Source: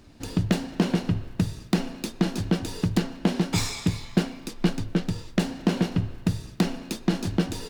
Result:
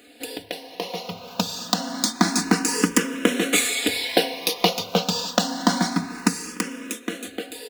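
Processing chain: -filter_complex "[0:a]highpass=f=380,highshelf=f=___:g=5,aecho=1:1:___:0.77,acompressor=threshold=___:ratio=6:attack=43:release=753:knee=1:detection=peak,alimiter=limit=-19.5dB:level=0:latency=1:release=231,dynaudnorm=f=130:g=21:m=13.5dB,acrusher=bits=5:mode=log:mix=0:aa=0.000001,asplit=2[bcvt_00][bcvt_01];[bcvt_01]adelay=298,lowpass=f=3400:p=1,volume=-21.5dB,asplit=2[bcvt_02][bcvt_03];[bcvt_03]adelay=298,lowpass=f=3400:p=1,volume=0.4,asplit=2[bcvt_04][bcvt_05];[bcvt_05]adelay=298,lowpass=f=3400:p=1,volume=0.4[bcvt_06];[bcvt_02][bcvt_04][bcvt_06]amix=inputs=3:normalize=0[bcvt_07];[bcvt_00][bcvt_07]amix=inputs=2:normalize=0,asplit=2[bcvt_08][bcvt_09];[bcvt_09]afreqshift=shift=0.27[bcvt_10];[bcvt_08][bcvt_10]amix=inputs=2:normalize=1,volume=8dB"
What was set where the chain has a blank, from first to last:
4300, 4.1, -37dB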